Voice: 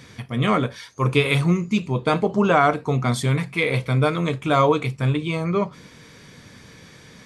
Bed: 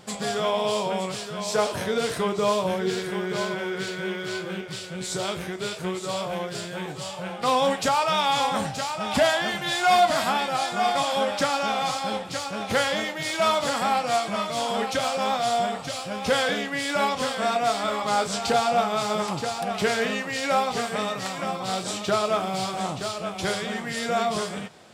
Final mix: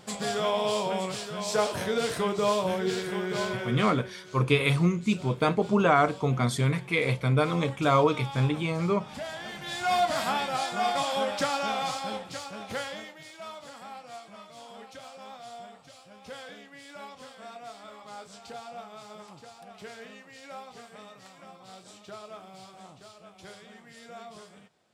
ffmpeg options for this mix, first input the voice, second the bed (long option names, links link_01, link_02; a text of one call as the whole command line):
ffmpeg -i stem1.wav -i stem2.wav -filter_complex "[0:a]adelay=3350,volume=-4.5dB[link_01];[1:a]volume=11dB,afade=type=out:start_time=3.48:duration=0.62:silence=0.177828,afade=type=in:start_time=9.26:duration=1.06:silence=0.211349,afade=type=out:start_time=11.74:duration=1.59:silence=0.158489[link_02];[link_01][link_02]amix=inputs=2:normalize=0" out.wav